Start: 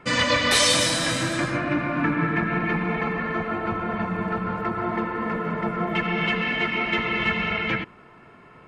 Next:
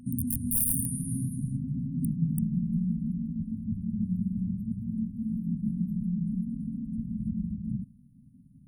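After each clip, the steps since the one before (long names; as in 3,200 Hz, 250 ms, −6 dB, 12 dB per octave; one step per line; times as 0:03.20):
backwards echo 243 ms −18.5 dB
wrap-around overflow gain 11 dB
brick-wall band-stop 270–8,900 Hz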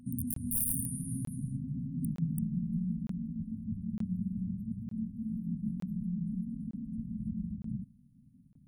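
regular buffer underruns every 0.91 s, samples 1,024, zero, from 0:00.34
level −5 dB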